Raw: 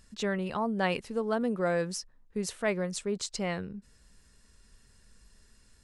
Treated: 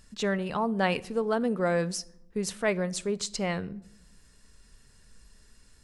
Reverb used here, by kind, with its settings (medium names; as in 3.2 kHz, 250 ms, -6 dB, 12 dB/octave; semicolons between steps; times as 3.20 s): simulated room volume 2000 m³, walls furnished, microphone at 0.4 m; trim +2.5 dB